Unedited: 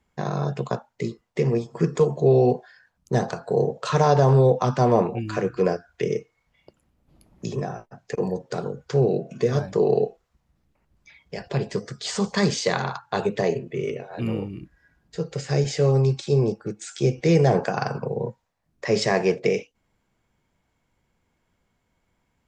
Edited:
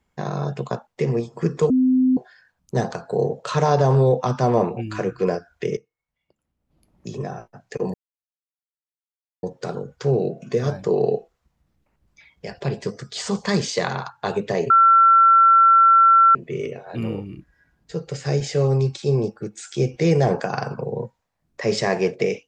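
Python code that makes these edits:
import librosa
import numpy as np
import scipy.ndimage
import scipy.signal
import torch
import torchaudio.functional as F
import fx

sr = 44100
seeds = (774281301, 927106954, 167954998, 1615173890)

y = fx.edit(x, sr, fx.cut(start_s=0.87, length_s=0.38),
    fx.bleep(start_s=2.08, length_s=0.47, hz=257.0, db=-13.5),
    fx.fade_in_from(start_s=6.15, length_s=1.59, curve='qua', floor_db=-19.5),
    fx.insert_silence(at_s=8.32, length_s=1.49),
    fx.insert_tone(at_s=13.59, length_s=1.65, hz=1350.0, db=-9.5), tone=tone)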